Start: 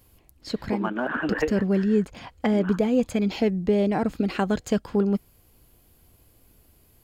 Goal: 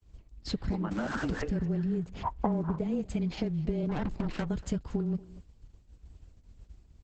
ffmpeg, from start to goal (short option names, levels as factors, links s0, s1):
-filter_complex "[0:a]asettb=1/sr,asplit=3[s0][s1][s2];[s0]atrim=end=0.914[s3];[s1]atrim=start=0.91:end=1.42,asetpts=PTS-STARTPTS,afade=t=in:d=0.004:c=qsin,afade=t=out:st=0.506:d=0.004:c=qsin,aeval=exprs='val(0)+0.5*0.0376*sgn(val(0))':c=same[s4];[s2]atrim=start=1.416[s5];[s3][s4]acrossfade=d=0.004:c1=hsin:c2=qsin[s6];[s6][s5]acrossfade=d=0.004:c1=qsin:c2=hsin,equalizer=f=67:t=o:w=1.9:g=14.5,agate=range=0.0224:threshold=0.00794:ratio=3:detection=peak,acompressor=threshold=0.0398:ratio=8,asplit=3[s7][s8][s9];[s7]afade=t=out:st=2.22:d=0.02[s10];[s8]lowpass=f=1000:t=q:w=7.3,afade=t=in:st=2.22:d=0.02,afade=t=out:st=2.78:d=0.02[s11];[s9]afade=t=in:st=2.78:d=0.02[s12];[s10][s11][s12]amix=inputs=3:normalize=0,lowshelf=f=330:g=4,asettb=1/sr,asplit=3[s13][s14][s15];[s13]atrim=end=3.894[s16];[s14]atrim=start=3.89:end=4.45,asetpts=PTS-STARTPTS,afade=t=in:d=0.004:c=qsin,afade=t=out:st=0.556:d=0.004:c=qsin,aeval=exprs='0.106*(cos(1*acos(clip(val(0)/0.106,-1,1)))-cos(1*PI/2))+0.015*(cos(8*acos(clip(val(0)/0.106,-1,1)))-cos(8*PI/2))':c=same[s17];[s15]atrim=start=4.446[s18];[s16][s17]acrossfade=d=0.004:c1=hsin:c2=qsin[s19];[s19][s18]acrossfade=d=0.004:c1=qsin:c2=hsin,aecho=1:1:235:0.1,afreqshift=-19,volume=0.75" -ar 48000 -c:a libopus -b:a 10k